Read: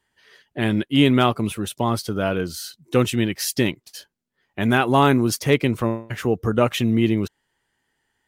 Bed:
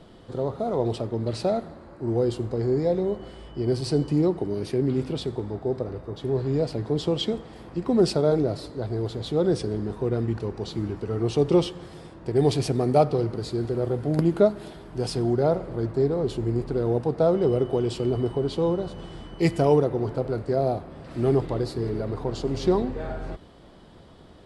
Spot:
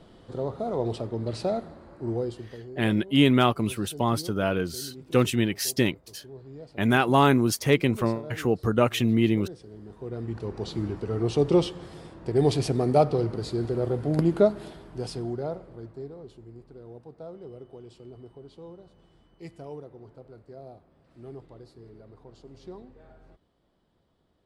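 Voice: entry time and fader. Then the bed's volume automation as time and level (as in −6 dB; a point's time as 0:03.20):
2.20 s, −3.0 dB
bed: 0:02.09 −3 dB
0:02.73 −19 dB
0:09.62 −19 dB
0:10.59 −1 dB
0:14.61 −1 dB
0:16.46 −21 dB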